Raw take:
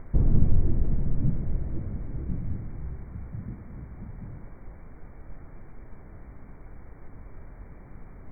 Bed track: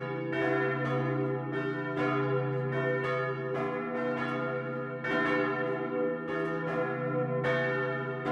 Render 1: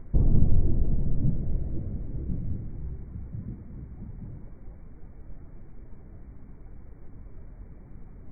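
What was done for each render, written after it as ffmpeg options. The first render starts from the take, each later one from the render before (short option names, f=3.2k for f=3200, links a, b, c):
-af "afftdn=nr=9:nf=-47"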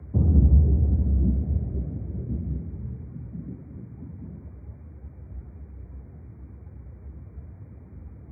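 -af "afreqshift=58"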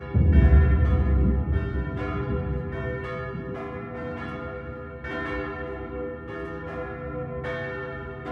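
-filter_complex "[1:a]volume=-2.5dB[a];[0:a][a]amix=inputs=2:normalize=0"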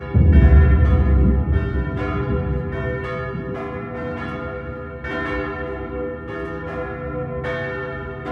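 -af "volume=6dB,alimiter=limit=-3dB:level=0:latency=1"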